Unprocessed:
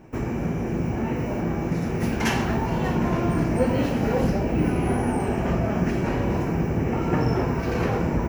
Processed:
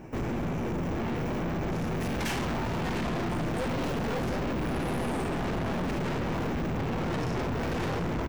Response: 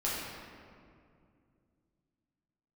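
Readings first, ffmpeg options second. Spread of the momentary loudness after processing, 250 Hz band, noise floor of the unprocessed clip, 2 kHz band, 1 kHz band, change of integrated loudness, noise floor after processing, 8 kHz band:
1 LU, −7.5 dB, −28 dBFS, −4.0 dB, −5.0 dB, −6.5 dB, −31 dBFS, −3.5 dB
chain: -filter_complex "[0:a]asplit=2[link_01][link_02];[link_02]adelay=698,lowpass=frequency=2900:poles=1,volume=-6dB,asplit=2[link_03][link_04];[link_04]adelay=698,lowpass=frequency=2900:poles=1,volume=0.52,asplit=2[link_05][link_06];[link_06]adelay=698,lowpass=frequency=2900:poles=1,volume=0.52,asplit=2[link_07][link_08];[link_08]adelay=698,lowpass=frequency=2900:poles=1,volume=0.52,asplit=2[link_09][link_10];[link_10]adelay=698,lowpass=frequency=2900:poles=1,volume=0.52,asplit=2[link_11][link_12];[link_12]adelay=698,lowpass=frequency=2900:poles=1,volume=0.52[link_13];[link_01][link_03][link_05][link_07][link_09][link_11][link_13]amix=inputs=7:normalize=0,aeval=exprs='(tanh(44.7*val(0)+0.3)-tanh(0.3))/44.7':channel_layout=same,volume=4dB"

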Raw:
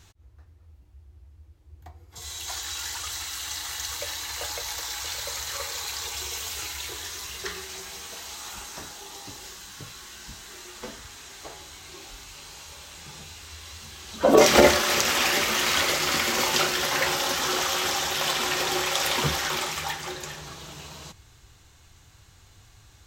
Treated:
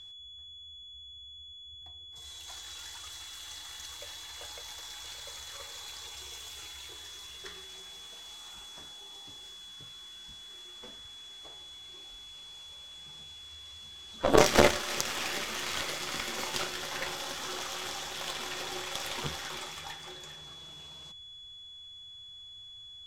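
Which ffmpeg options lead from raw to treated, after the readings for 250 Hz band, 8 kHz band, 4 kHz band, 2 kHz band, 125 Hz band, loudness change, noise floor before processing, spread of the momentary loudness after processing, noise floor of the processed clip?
−7.5 dB, −10.5 dB, −8.5 dB, −9.5 dB, −6.0 dB, −11.0 dB, −55 dBFS, 13 LU, −49 dBFS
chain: -af "aeval=exprs='val(0)+0.0224*sin(2*PI*3400*n/s)':channel_layout=same,lowpass=12000,aeval=exprs='0.668*(cos(1*acos(clip(val(0)/0.668,-1,1)))-cos(1*PI/2))+0.133*(cos(2*acos(clip(val(0)/0.668,-1,1)))-cos(2*PI/2))+0.15*(cos(3*acos(clip(val(0)/0.668,-1,1)))-cos(3*PI/2))+0.0119*(cos(6*acos(clip(val(0)/0.668,-1,1)))-cos(6*PI/2))+0.00376*(cos(7*acos(clip(val(0)/0.668,-1,1)))-cos(7*PI/2))':channel_layout=same,volume=-2dB"

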